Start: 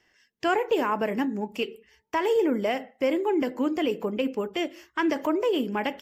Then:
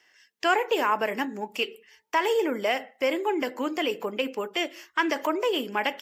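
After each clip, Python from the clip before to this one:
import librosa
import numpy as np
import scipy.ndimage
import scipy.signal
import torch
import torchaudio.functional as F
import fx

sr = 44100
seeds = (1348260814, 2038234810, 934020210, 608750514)

y = fx.highpass(x, sr, hz=920.0, slope=6)
y = y * librosa.db_to_amplitude(5.5)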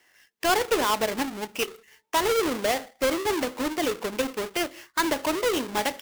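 y = fx.halfwave_hold(x, sr)
y = y * librosa.db_to_amplitude(-3.5)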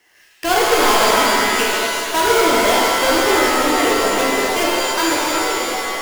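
y = fx.fade_out_tail(x, sr, length_s=1.27)
y = fx.rev_shimmer(y, sr, seeds[0], rt60_s=2.3, semitones=7, shimmer_db=-2, drr_db=-4.5)
y = y * librosa.db_to_amplitude(2.5)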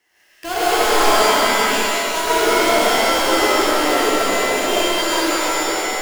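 y = fx.rev_freeverb(x, sr, rt60_s=1.5, hf_ratio=0.95, predelay_ms=75, drr_db=-7.0)
y = y * librosa.db_to_amplitude(-8.5)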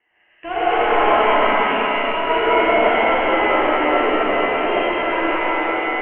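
y = scipy.signal.sosfilt(scipy.signal.cheby1(6, 3, 3000.0, 'lowpass', fs=sr, output='sos'), x)
y = fx.echo_alternate(y, sr, ms=102, hz=890.0, feedback_pct=82, wet_db=-5.5)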